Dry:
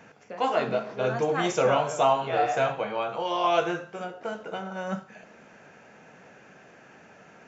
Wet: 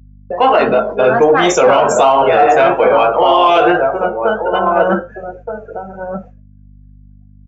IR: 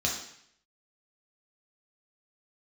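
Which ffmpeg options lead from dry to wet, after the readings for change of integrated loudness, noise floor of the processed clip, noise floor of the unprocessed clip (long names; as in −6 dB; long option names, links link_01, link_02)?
+15.5 dB, −42 dBFS, −53 dBFS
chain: -filter_complex "[0:a]highpass=240,asplit=2[link_01][link_02];[link_02]adelay=1224,volume=-7dB,highshelf=frequency=4000:gain=-27.6[link_03];[link_01][link_03]amix=inputs=2:normalize=0,afftdn=noise_reduction=29:noise_floor=-38,agate=range=-33dB:threshold=-50dB:ratio=3:detection=peak,aeval=exprs='val(0)+0.00126*(sin(2*PI*50*n/s)+sin(2*PI*2*50*n/s)/2+sin(2*PI*3*50*n/s)/3+sin(2*PI*4*50*n/s)/4+sin(2*PI*5*50*n/s)/5)':channel_layout=same,flanger=delay=7.2:depth=2.3:regen=-81:speed=1.3:shape=sinusoidal,asplit=2[link_04][link_05];[link_05]asoftclip=type=tanh:threshold=-27.5dB,volume=-9dB[link_06];[link_04][link_06]amix=inputs=2:normalize=0,alimiter=level_in=21.5dB:limit=-1dB:release=50:level=0:latency=1,volume=-1dB"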